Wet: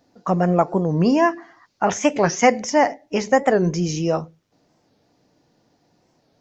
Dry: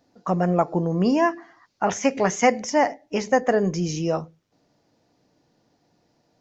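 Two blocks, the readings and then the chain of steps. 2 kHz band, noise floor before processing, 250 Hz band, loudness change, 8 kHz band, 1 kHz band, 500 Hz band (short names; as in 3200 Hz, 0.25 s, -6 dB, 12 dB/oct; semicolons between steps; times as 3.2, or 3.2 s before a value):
+3.0 dB, -68 dBFS, +3.0 dB, +3.0 dB, n/a, +3.0 dB, +3.0 dB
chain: record warp 45 rpm, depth 160 cents; gain +3 dB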